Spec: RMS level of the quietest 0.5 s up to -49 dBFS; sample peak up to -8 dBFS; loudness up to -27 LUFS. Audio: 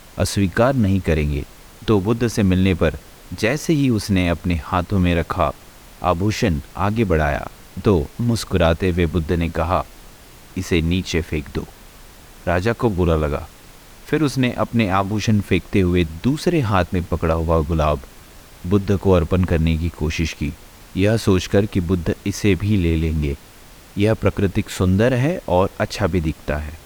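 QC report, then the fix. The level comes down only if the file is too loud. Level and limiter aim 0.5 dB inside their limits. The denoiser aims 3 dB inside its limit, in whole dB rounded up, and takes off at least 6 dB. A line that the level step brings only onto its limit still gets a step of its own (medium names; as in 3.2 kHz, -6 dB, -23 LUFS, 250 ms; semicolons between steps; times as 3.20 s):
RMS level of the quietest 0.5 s -43 dBFS: fail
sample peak -4.5 dBFS: fail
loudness -20.0 LUFS: fail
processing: trim -7.5 dB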